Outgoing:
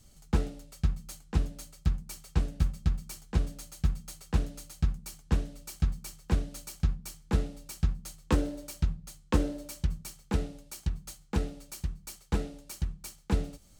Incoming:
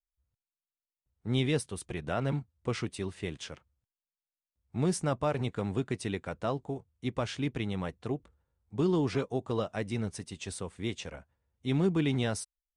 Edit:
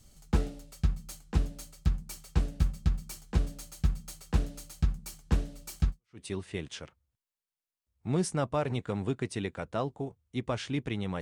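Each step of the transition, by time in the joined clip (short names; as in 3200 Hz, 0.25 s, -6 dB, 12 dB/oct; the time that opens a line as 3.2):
outgoing
6.05 switch to incoming from 2.74 s, crossfade 0.32 s exponential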